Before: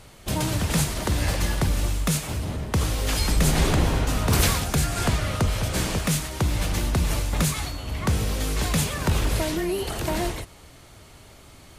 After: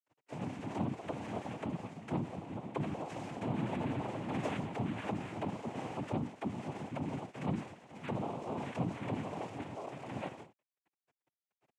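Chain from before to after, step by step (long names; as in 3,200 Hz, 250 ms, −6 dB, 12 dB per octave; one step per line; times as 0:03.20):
channel vocoder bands 32, square 155 Hz
dead-zone distortion −51 dBFS
dynamic equaliser 450 Hz, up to +5 dB, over −48 dBFS, Q 2.6
soft clipping −24.5 dBFS, distortion −7 dB
three-way crossover with the lows and the highs turned down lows −14 dB, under 200 Hz, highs −22 dB, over 3,200 Hz
cochlear-implant simulation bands 4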